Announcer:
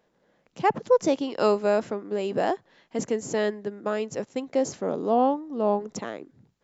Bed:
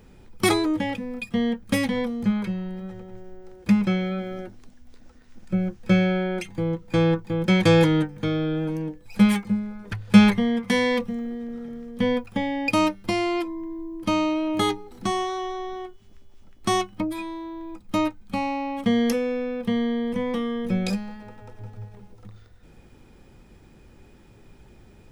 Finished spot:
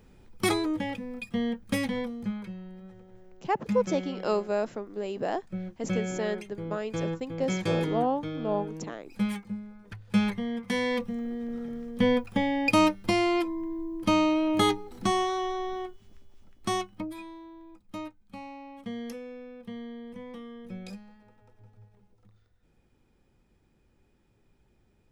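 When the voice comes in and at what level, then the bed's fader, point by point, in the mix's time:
2.85 s, -5.5 dB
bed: 1.96 s -5.5 dB
2.41 s -11.5 dB
10.22 s -11.5 dB
11.54 s -0.5 dB
15.83 s -0.5 dB
18.13 s -16 dB

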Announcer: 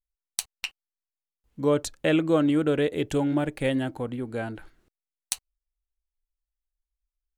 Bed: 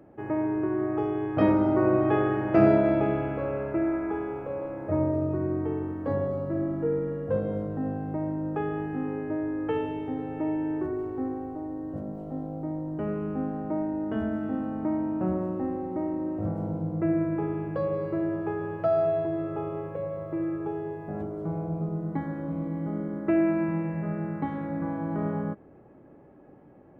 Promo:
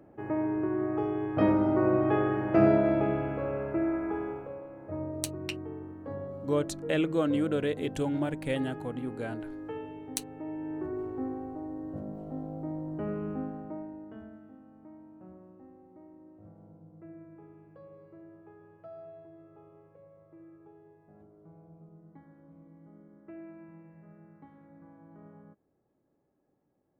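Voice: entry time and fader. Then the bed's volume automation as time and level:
4.85 s, -5.5 dB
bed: 4.29 s -2.5 dB
4.64 s -10.5 dB
10.43 s -10.5 dB
11 s -3.5 dB
13.31 s -3.5 dB
14.57 s -23 dB

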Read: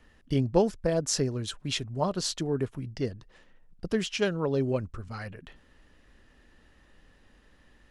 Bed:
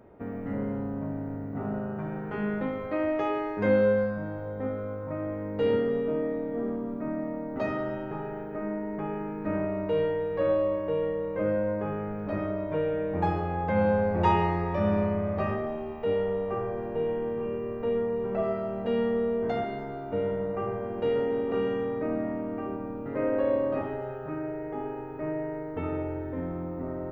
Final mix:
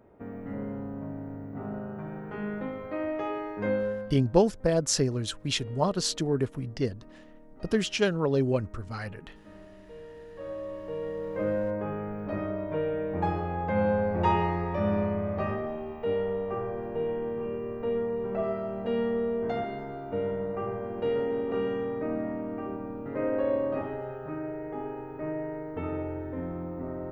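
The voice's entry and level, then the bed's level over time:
3.80 s, +2.0 dB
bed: 3.65 s -4 dB
4.58 s -20.5 dB
9.93 s -20.5 dB
11.36 s -1.5 dB

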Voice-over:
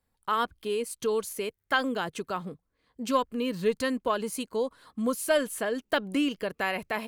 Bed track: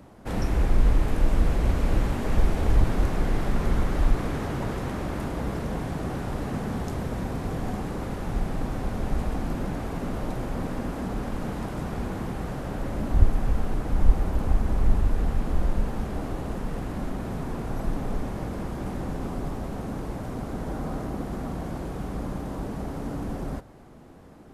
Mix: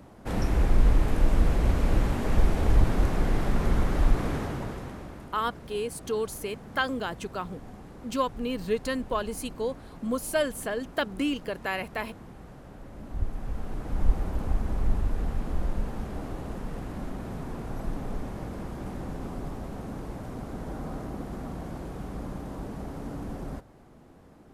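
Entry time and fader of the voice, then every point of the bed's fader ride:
5.05 s, -1.5 dB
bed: 4.34 s -0.5 dB
5.31 s -14.5 dB
12.9 s -14.5 dB
14.04 s -4.5 dB

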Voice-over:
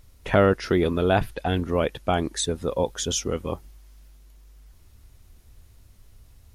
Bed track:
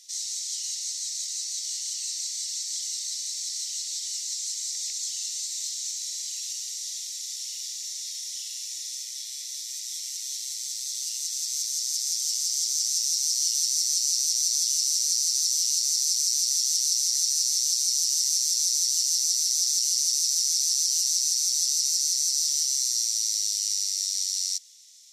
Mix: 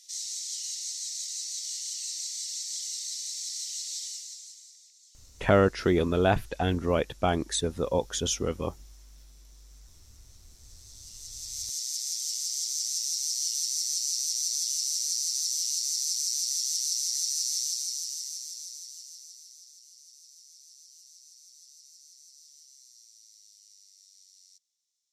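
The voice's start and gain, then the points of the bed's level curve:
5.15 s, -2.5 dB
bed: 4.02 s -3.5 dB
4.92 s -26.5 dB
10.48 s -26.5 dB
11.7 s -5 dB
17.59 s -5 dB
19.8 s -29.5 dB

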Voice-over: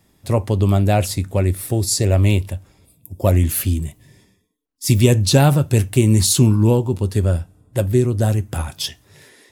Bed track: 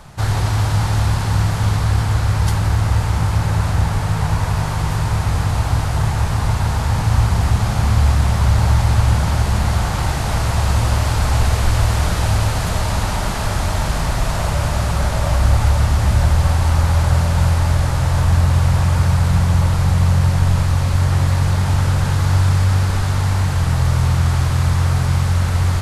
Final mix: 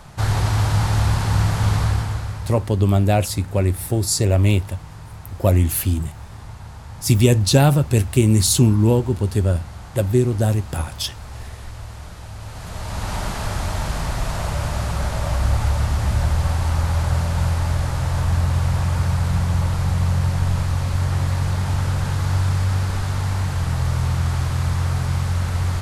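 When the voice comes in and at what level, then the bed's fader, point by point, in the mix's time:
2.20 s, -1.0 dB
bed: 1.83 s -1.5 dB
2.69 s -19 dB
12.34 s -19 dB
13.15 s -5 dB

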